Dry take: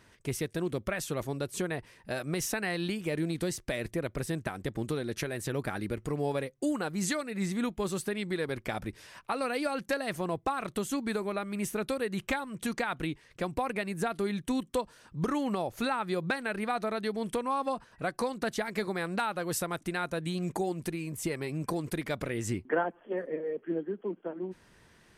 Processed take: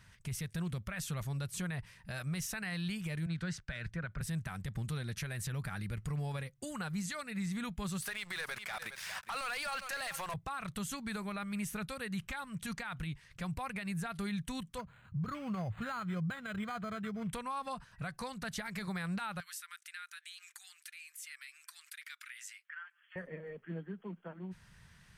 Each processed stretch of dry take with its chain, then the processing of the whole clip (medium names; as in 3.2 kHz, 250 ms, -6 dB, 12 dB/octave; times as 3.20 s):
3.26–4.21 s: low-pass 4.9 kHz + peaking EQ 1.5 kHz +11 dB 0.34 oct + three bands expanded up and down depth 100%
8.02–10.34 s: high-pass 640 Hz + waveshaping leveller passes 3 + delay 409 ms -16 dB
14.78–17.33 s: peaking EQ 100 Hz +12 dB 0.81 oct + comb of notches 890 Hz + decimation joined by straight lines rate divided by 8×
19.40–23.16 s: steep high-pass 1.4 kHz + compression 2:1, threshold -48 dBFS
whole clip: FFT filter 170 Hz 0 dB, 310 Hz -21 dB, 1.4 kHz -5 dB; peak limiter -34.5 dBFS; trim +4 dB